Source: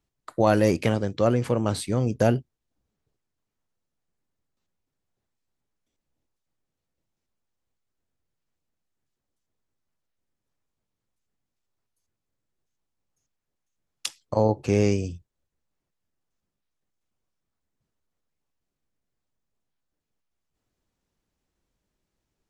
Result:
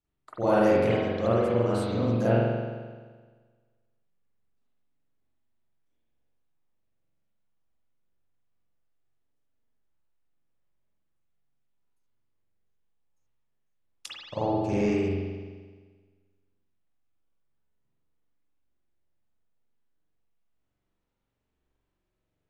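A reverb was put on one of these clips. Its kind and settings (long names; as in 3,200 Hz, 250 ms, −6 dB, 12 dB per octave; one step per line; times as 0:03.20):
spring reverb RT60 1.5 s, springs 43 ms, chirp 35 ms, DRR −10 dB
level −11.5 dB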